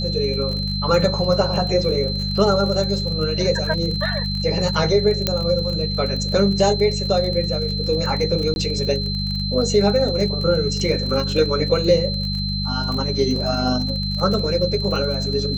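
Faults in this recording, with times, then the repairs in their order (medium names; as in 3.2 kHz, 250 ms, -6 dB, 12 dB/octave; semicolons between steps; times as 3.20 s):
crackle 31 per s -26 dBFS
hum 50 Hz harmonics 4 -25 dBFS
whine 4.1 kHz -26 dBFS
5.27 s: pop -4 dBFS
8.54–8.56 s: dropout 21 ms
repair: de-click; band-stop 4.1 kHz, Q 30; de-hum 50 Hz, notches 4; interpolate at 8.54 s, 21 ms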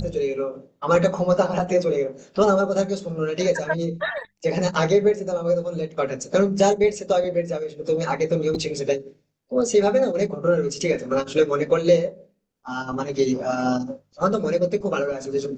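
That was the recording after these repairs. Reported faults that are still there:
nothing left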